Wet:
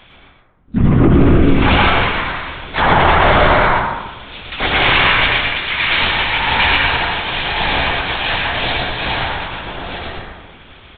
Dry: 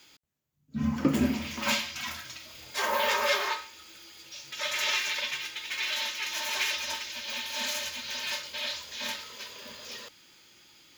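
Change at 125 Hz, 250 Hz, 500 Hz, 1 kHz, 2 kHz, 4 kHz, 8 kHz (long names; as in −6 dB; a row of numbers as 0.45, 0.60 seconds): +24.5 dB, +15.5 dB, +18.0 dB, +20.0 dB, +17.5 dB, +13.0 dB, below −40 dB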